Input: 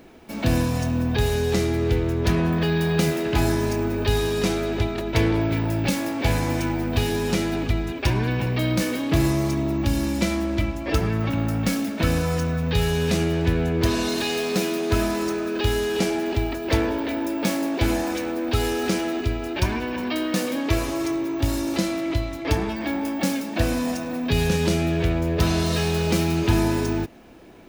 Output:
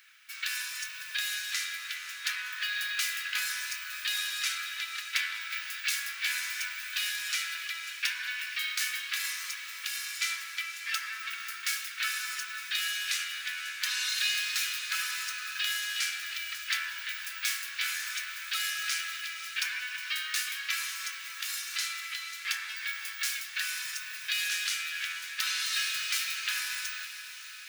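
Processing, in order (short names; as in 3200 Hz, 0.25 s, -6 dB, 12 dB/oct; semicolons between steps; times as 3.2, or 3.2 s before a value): steep high-pass 1400 Hz 48 dB/oct; diffused feedback echo 0.54 s, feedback 63%, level -12 dB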